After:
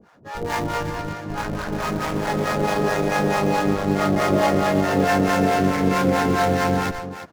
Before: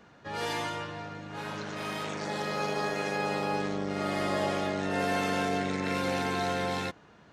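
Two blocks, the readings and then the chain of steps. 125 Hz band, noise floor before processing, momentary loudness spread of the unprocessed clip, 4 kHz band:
+13.0 dB, -56 dBFS, 9 LU, +5.0 dB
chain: median filter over 15 samples; AGC gain up to 7.5 dB; harmonic tremolo 4.6 Hz, depth 100%, crossover 570 Hz; echo 0.345 s -9.5 dB; in parallel at -11 dB: Schmitt trigger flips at -29.5 dBFS; on the sum: gain +7.5 dB

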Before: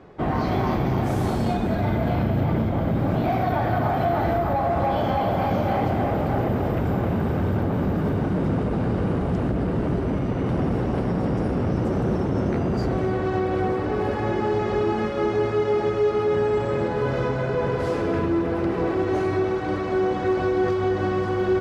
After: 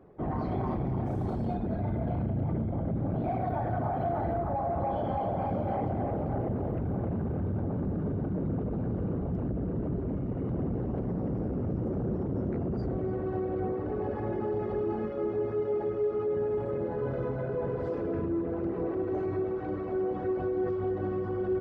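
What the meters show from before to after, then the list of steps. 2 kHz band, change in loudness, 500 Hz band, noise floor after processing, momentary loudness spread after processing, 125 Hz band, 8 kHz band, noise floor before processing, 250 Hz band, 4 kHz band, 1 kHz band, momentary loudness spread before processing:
-16.5 dB, -8.0 dB, -8.0 dB, -34 dBFS, 2 LU, -7.5 dB, n/a, -26 dBFS, -8.0 dB, under -20 dB, -10.0 dB, 2 LU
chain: formant sharpening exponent 1.5; gain -8 dB

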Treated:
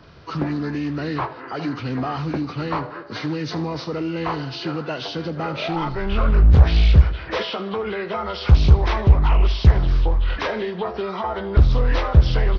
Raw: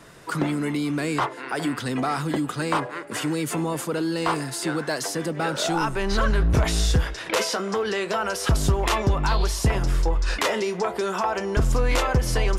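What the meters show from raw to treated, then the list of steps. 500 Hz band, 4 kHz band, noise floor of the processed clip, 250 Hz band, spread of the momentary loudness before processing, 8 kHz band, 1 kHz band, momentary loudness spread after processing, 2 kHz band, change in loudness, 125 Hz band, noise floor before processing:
-0.5 dB, -1.0 dB, -35 dBFS, +0.5 dB, 5 LU, under -15 dB, -1.0 dB, 12 LU, -2.5 dB, +3.5 dB, +7.5 dB, -36 dBFS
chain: nonlinear frequency compression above 1100 Hz 1.5:1; bell 72 Hz +14 dB 1.2 oct; on a send: feedback echo 78 ms, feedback 50%, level -16 dB; on the sum: Doppler distortion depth 0.69 ms; gain -1 dB

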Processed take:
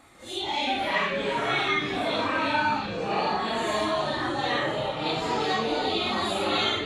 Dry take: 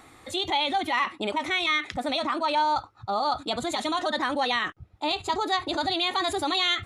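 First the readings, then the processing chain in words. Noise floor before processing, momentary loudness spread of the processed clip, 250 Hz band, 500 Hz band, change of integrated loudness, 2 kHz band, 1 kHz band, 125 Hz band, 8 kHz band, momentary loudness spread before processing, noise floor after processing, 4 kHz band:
-53 dBFS, 4 LU, +1.5 dB, +3.0 dB, 0.0 dB, +1.0 dB, -1.0 dB, +8.5 dB, -1.5 dB, 6 LU, -34 dBFS, -1.5 dB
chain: phase scrambler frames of 0.2 s; echoes that change speed 0.149 s, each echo -6 st, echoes 3; delay with a stepping band-pass 0.345 s, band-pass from 3300 Hz, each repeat 0.7 oct, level -7 dB; gain -2.5 dB

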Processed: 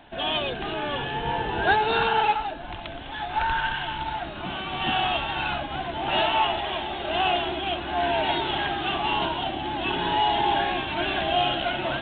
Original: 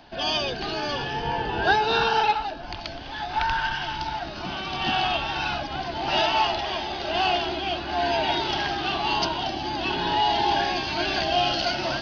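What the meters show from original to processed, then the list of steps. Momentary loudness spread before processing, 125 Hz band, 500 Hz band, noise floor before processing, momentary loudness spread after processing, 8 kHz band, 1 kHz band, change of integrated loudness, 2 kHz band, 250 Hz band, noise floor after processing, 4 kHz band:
9 LU, 0.0 dB, 0.0 dB, -35 dBFS, 9 LU, n/a, 0.0 dB, -0.5 dB, 0.0 dB, 0.0 dB, -36 dBFS, -1.5 dB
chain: vibrato 0.81 Hz 5.2 cents; G.726 24 kbps 8000 Hz

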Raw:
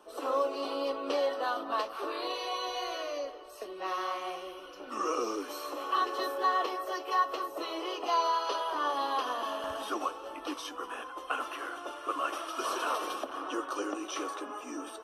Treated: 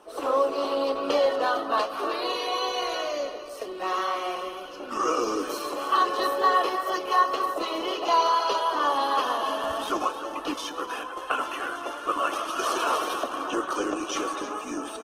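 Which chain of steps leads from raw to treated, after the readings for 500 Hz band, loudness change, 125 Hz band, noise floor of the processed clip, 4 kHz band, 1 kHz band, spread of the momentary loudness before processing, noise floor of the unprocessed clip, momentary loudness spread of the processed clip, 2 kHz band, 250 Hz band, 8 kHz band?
+7.0 dB, +7.0 dB, n/a, -38 dBFS, +7.0 dB, +7.0 dB, 10 LU, -46 dBFS, 10 LU, +7.0 dB, +7.0 dB, +7.0 dB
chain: tapped delay 0.132/0.307 s -18/-11.5 dB; wow and flutter 19 cents; gain +6.5 dB; Opus 16 kbps 48000 Hz

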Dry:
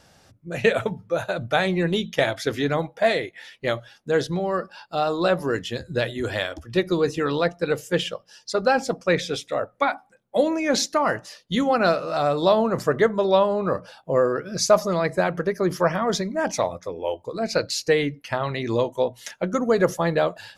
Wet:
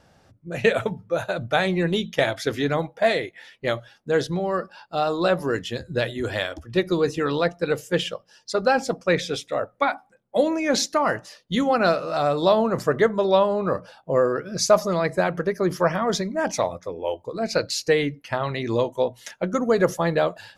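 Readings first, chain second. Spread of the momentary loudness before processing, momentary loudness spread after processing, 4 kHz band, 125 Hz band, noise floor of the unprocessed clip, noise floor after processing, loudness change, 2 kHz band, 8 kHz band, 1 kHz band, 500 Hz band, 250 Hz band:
9 LU, 9 LU, 0.0 dB, 0.0 dB, -58 dBFS, -60 dBFS, 0.0 dB, 0.0 dB, 0.0 dB, 0.0 dB, 0.0 dB, 0.0 dB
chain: mismatched tape noise reduction decoder only

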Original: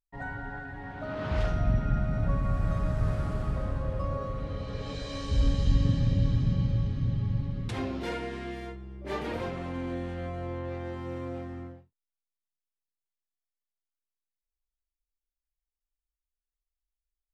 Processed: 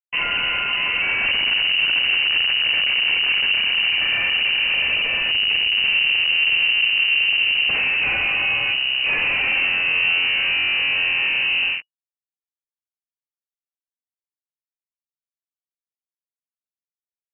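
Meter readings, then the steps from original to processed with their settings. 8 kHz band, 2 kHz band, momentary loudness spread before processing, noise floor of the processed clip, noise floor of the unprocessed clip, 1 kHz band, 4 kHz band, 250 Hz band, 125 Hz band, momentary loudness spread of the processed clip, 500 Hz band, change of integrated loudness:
n/a, +27.0 dB, 13 LU, under -85 dBFS, under -85 dBFS, +6.0 dB, +31.0 dB, -10.0 dB, under -15 dB, 3 LU, -3.5 dB, +14.5 dB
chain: fuzz box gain 51 dB, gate -50 dBFS; fifteen-band EQ 160 Hz +8 dB, 400 Hz +4 dB, 1600 Hz -4 dB; inverted band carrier 2900 Hz; gain -8 dB

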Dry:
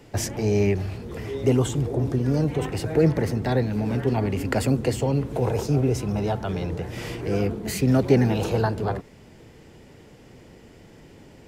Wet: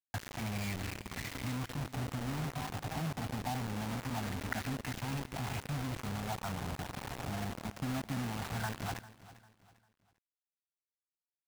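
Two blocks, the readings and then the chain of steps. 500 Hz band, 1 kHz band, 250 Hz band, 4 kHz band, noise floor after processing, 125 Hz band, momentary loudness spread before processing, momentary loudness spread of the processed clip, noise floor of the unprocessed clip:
-22.0 dB, -8.0 dB, -15.5 dB, -6.5 dB, under -85 dBFS, -14.5 dB, 8 LU, 4 LU, -49 dBFS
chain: elliptic band-stop 270–700 Hz, stop band 40 dB; compressor 2.5:1, threshold -39 dBFS, peak gain reduction 15 dB; LFO low-pass sine 0.24 Hz 800–2300 Hz; requantised 6-bit, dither none; on a send: feedback echo 0.398 s, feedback 35%, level -17.5 dB; on the sum: gain -3 dB

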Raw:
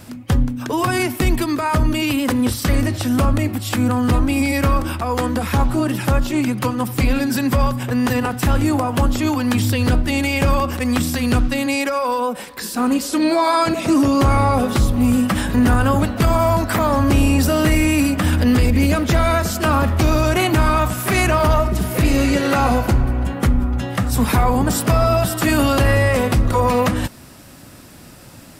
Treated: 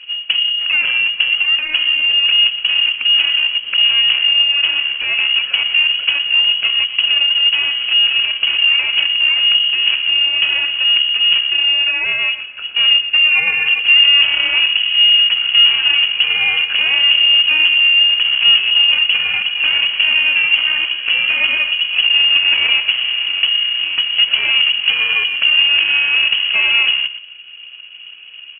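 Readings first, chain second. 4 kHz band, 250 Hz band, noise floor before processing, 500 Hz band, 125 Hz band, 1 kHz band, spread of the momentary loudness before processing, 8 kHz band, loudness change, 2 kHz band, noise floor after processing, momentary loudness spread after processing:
+21.5 dB, under -30 dB, -41 dBFS, under -20 dB, under -30 dB, -14.5 dB, 5 LU, under -40 dB, +6.5 dB, +12.0 dB, -34 dBFS, 6 LU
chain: median filter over 41 samples; HPF 180 Hz 24 dB/oct; on a send: echo 0.119 s -14 dB; on the sum: inverted band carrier 3100 Hz; in parallel at +2.5 dB: compressor, threshold -27 dBFS, peak gain reduction 14 dB; on the sum: high shelf 2100 Hz +11 dB; gain -3.5 dB

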